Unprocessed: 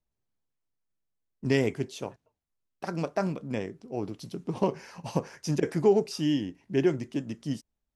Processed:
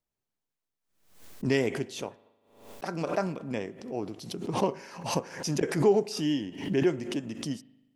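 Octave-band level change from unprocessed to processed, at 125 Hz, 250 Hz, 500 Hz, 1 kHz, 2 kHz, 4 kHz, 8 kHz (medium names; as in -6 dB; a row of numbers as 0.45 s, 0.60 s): -2.0 dB, -1.0 dB, -0.5 dB, +2.0 dB, +1.5 dB, +2.5 dB, +5.0 dB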